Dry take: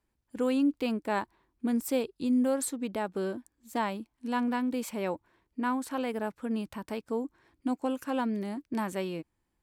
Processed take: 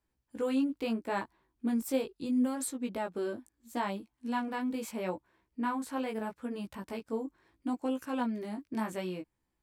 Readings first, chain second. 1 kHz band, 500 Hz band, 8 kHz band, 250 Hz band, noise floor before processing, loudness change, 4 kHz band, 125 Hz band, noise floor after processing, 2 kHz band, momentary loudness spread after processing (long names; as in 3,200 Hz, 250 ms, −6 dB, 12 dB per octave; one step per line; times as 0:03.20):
−3.0 dB, −3.5 dB, −3.0 dB, −3.0 dB, −80 dBFS, −3.0 dB, −3.0 dB, −3.0 dB, −82 dBFS, −3.0 dB, 11 LU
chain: chorus effect 0.75 Hz, delay 15.5 ms, depth 3.4 ms